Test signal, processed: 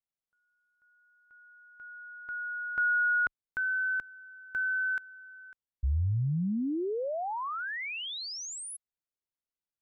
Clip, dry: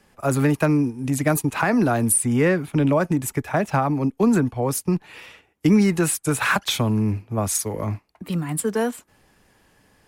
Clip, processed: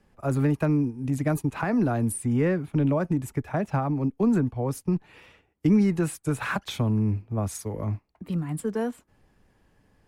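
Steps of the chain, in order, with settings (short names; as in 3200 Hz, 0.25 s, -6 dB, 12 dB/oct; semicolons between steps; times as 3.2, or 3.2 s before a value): tilt -2 dB/oct; gain -8 dB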